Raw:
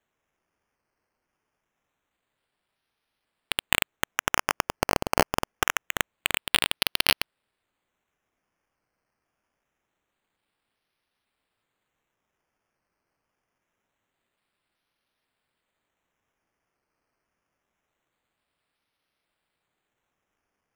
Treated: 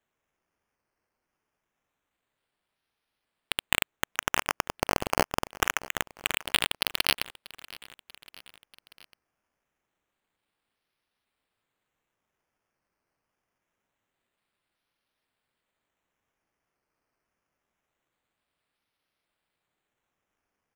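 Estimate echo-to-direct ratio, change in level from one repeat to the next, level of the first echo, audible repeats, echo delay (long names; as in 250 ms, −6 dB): −18.5 dB, −4.5 dB, −20.0 dB, 3, 639 ms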